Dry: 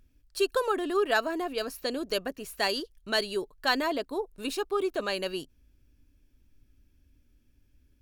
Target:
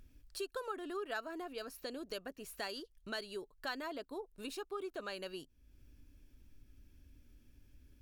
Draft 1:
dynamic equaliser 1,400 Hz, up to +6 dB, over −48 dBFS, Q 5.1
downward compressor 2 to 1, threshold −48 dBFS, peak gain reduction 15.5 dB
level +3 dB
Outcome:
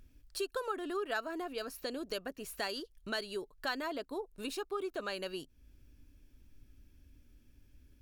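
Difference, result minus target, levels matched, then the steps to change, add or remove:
downward compressor: peak gain reduction −4.5 dB
change: downward compressor 2 to 1, threshold −57 dBFS, peak gain reduction 20 dB

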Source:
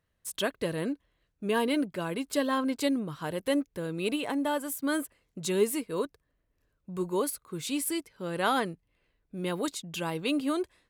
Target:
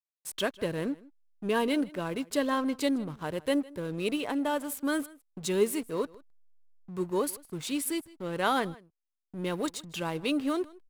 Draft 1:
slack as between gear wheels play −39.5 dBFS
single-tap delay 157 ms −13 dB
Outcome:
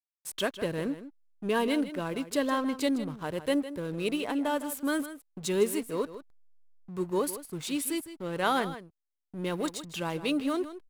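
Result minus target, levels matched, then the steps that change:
echo-to-direct +9 dB
change: single-tap delay 157 ms −22 dB

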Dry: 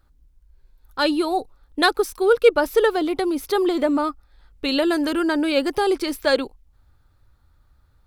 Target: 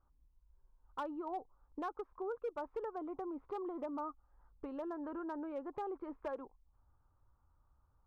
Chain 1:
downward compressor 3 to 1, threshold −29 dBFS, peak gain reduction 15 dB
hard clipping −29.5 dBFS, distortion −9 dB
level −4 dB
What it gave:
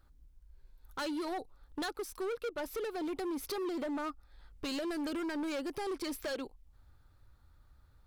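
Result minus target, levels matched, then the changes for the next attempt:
1,000 Hz band −4.5 dB
add after downward compressor: transistor ladder low-pass 1,200 Hz, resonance 55%

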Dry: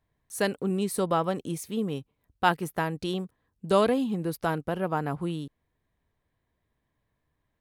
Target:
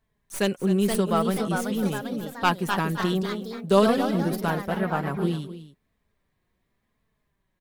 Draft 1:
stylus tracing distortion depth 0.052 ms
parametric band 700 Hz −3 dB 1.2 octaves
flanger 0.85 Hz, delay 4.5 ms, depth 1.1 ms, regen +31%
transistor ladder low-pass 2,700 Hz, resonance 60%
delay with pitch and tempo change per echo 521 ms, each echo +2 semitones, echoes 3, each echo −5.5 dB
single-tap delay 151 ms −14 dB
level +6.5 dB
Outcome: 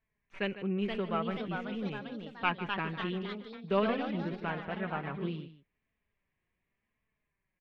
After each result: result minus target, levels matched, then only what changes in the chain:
echo 110 ms early; 2,000 Hz band +3.5 dB
change: single-tap delay 261 ms −14 dB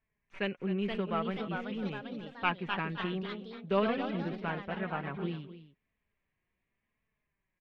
2,000 Hz band +4.0 dB
remove: transistor ladder low-pass 2,700 Hz, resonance 60%

